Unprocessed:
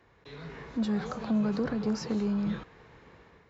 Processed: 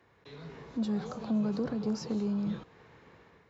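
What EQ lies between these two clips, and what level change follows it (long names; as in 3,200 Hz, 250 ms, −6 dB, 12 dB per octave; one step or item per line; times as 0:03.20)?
high-pass filter 73 Hz
dynamic equaliser 1,800 Hz, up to −7 dB, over −55 dBFS, Q 1.1
−2.0 dB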